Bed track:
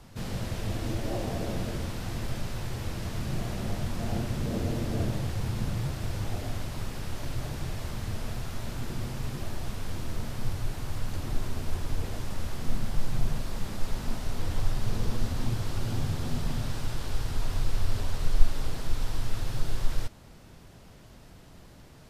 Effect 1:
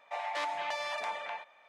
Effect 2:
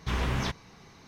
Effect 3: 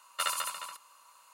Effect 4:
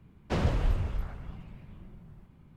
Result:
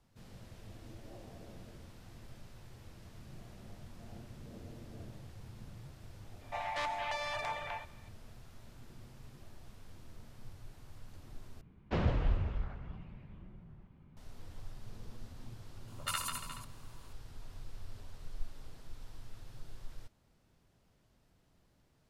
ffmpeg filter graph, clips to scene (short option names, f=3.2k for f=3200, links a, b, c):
-filter_complex "[0:a]volume=-19.5dB[a];[1:a]aresample=32000,aresample=44100[b];[4:a]lowpass=4k[c];[3:a]acrossover=split=660[d][e];[e]adelay=80[f];[d][f]amix=inputs=2:normalize=0[g];[a]asplit=2[h][i];[h]atrim=end=11.614[j];[c]atrim=end=2.56,asetpts=PTS-STARTPTS,volume=-3.5dB[k];[i]atrim=start=14.166[l];[b]atrim=end=1.68,asetpts=PTS-STARTPTS,volume=-2dB,afade=t=in:d=0.004:c=hsin,afade=t=out:st=1.676:d=0.004:c=hsin,adelay=6410[m];[g]atrim=end=1.33,asetpts=PTS-STARTPTS,volume=-5dB,afade=t=in:d=0.004:c=hsin,afade=t=out:st=1.326:d=0.004:c=hsin,adelay=15800[n];[j][k]acrossfade=d=0.004:c1=hsin:c2=hsin[o];[o][l]acrossfade=d=0.004:c1=hsin:c2=hsin[p];[p][m][n]amix=inputs=3:normalize=0"